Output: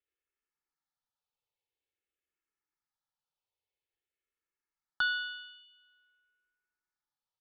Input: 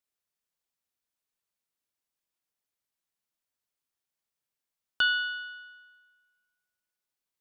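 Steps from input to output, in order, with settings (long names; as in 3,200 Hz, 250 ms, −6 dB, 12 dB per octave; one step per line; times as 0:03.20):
low-pass filter 3,500 Hz 12 dB per octave
comb filter 2.3 ms, depth 58%
frequency shifter mixed with the dry sound −0.49 Hz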